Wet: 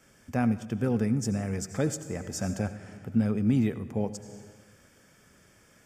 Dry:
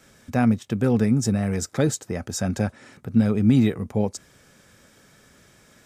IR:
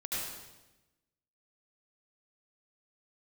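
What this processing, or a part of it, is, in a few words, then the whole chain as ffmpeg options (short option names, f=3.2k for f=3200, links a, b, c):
compressed reverb return: -filter_complex "[0:a]asplit=2[a][b];[1:a]atrim=start_sample=2205[c];[b][c]afir=irnorm=-1:irlink=0,acompressor=threshold=-23dB:ratio=6,volume=-7.5dB[d];[a][d]amix=inputs=2:normalize=0,bandreject=f=3.9k:w=5.1,volume=-7.5dB"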